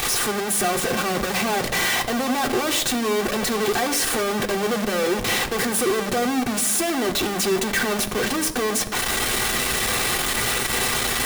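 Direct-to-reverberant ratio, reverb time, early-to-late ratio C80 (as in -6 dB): 1.5 dB, 1.0 s, 15.0 dB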